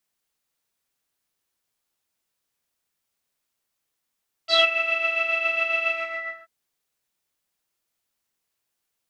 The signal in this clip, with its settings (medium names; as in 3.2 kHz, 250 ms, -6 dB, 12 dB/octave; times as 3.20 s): synth patch with tremolo E5, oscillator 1 saw, oscillator 2 saw, interval +12 st, sub -29.5 dB, noise -14.5 dB, filter lowpass, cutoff 1.7 kHz, Q 11, filter envelope 1.5 oct, filter decay 0.18 s, attack 117 ms, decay 0.06 s, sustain -14 dB, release 0.57 s, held 1.42 s, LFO 7.3 Hz, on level 5.5 dB